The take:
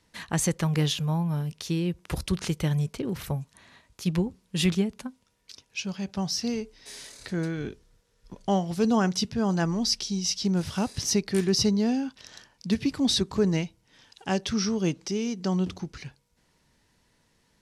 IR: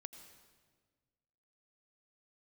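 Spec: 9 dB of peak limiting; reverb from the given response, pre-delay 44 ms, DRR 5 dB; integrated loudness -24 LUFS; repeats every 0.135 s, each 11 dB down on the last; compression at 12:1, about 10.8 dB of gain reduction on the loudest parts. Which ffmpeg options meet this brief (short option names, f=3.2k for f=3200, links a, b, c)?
-filter_complex "[0:a]acompressor=threshold=-30dB:ratio=12,alimiter=level_in=2dB:limit=-24dB:level=0:latency=1,volume=-2dB,aecho=1:1:135|270|405:0.282|0.0789|0.0221,asplit=2[a][b];[1:a]atrim=start_sample=2205,adelay=44[c];[b][c]afir=irnorm=-1:irlink=0,volume=0.5dB[d];[a][d]amix=inputs=2:normalize=0,volume=11dB"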